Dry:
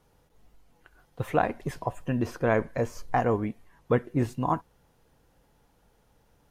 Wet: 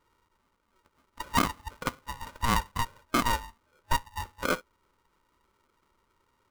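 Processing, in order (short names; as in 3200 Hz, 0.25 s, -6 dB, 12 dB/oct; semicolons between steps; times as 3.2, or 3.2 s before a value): FFT band-pass 370–1100 Hz; polarity switched at an audio rate 470 Hz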